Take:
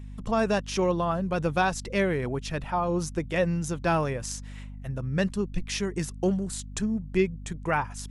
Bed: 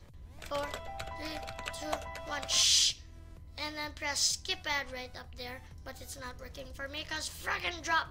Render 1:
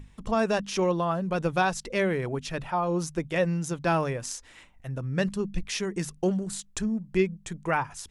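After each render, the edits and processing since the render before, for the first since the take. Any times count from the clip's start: hum notches 50/100/150/200/250 Hz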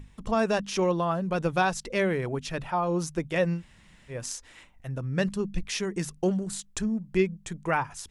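3.58–4.13 s: room tone, crossfade 0.10 s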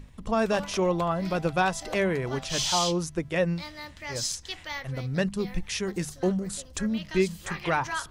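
add bed -2.5 dB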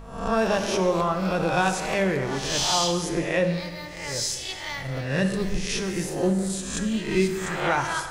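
reverse spectral sustain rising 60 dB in 0.67 s; plate-style reverb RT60 1.6 s, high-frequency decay 0.8×, DRR 6 dB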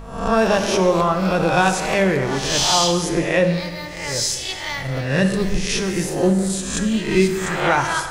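trim +6 dB

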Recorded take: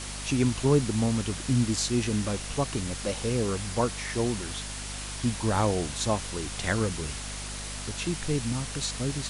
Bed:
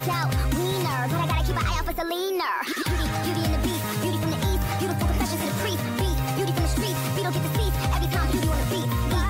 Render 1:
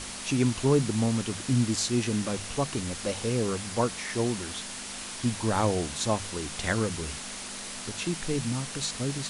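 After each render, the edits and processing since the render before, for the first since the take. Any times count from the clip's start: hum notches 50/100/150 Hz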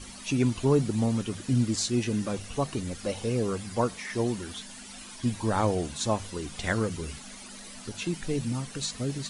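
noise reduction 12 dB, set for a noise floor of -39 dBFS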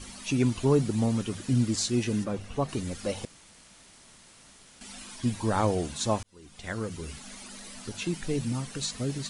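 2.23–2.68 s: treble shelf 2.5 kHz -> 4.5 kHz -11.5 dB; 3.25–4.81 s: room tone; 6.23–7.33 s: fade in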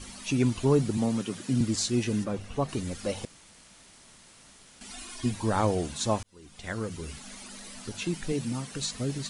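0.97–1.61 s: high-pass 130 Hz 24 dB/octave; 4.90–5.31 s: comb 2.8 ms, depth 71%; 8.32–8.72 s: high-pass 130 Hz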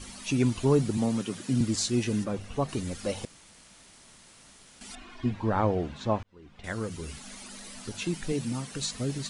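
4.95–6.64 s: low-pass 2.4 kHz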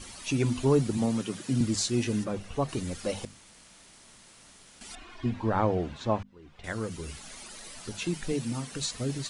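hum notches 50/100/150/200/250 Hz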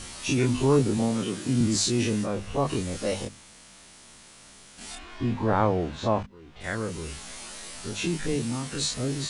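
every event in the spectrogram widened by 60 ms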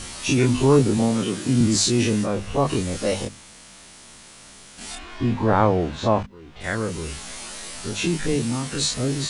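trim +5 dB

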